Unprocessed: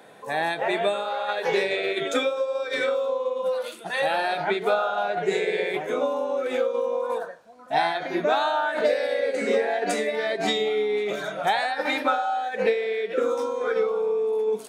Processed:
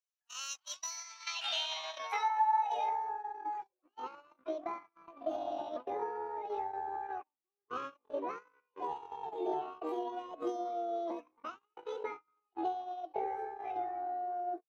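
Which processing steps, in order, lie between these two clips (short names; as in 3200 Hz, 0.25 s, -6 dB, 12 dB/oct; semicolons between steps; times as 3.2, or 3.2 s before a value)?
half-wave gain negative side -3 dB; vocal rider within 4 dB 0.5 s; band-pass sweep 4300 Hz -> 220 Hz, 0.85–3.27; gate -40 dBFS, range -38 dB; pitch shift +8.5 st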